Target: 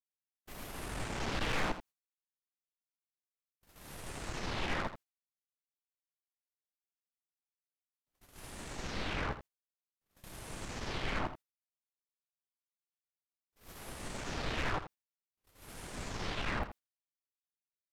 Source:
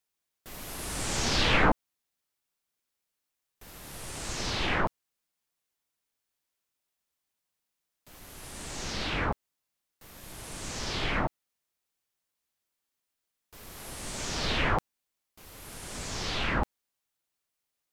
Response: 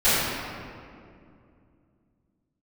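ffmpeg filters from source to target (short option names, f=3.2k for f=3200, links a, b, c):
-filter_complex "[0:a]acrossover=split=3000[a][b];[b]acompressor=threshold=-47dB:ratio=4:attack=1:release=60[c];[a][c]amix=inputs=2:normalize=0,agate=range=-37dB:threshold=-46dB:ratio=16:detection=peak,aeval=exprs='(tanh(35.5*val(0)+0.5)-tanh(0.5))/35.5':c=same,asplit=2[d][e];[e]aecho=0:1:82:0.266[f];[d][f]amix=inputs=2:normalize=0,volume=-1dB"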